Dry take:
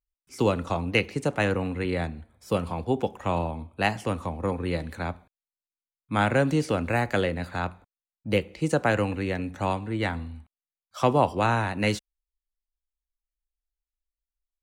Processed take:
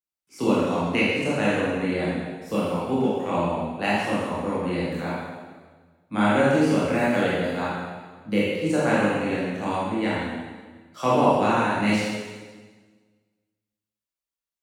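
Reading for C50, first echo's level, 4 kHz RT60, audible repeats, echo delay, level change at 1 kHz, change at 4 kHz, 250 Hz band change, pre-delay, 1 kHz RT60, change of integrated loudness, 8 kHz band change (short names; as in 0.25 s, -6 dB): -3.0 dB, none, 1.4 s, none, none, +3.0 dB, +2.5 dB, +5.5 dB, 20 ms, 1.4 s, +3.0 dB, +2.5 dB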